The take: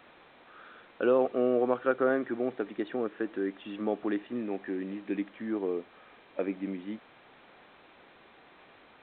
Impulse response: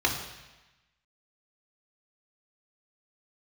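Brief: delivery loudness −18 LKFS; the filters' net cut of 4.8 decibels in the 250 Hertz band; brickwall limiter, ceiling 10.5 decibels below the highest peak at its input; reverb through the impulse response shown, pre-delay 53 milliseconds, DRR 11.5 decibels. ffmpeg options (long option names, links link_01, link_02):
-filter_complex "[0:a]equalizer=frequency=250:width_type=o:gain=-6.5,alimiter=level_in=0.5dB:limit=-24dB:level=0:latency=1,volume=-0.5dB,asplit=2[link_01][link_02];[1:a]atrim=start_sample=2205,adelay=53[link_03];[link_02][link_03]afir=irnorm=-1:irlink=0,volume=-24dB[link_04];[link_01][link_04]amix=inputs=2:normalize=0,volume=19.5dB"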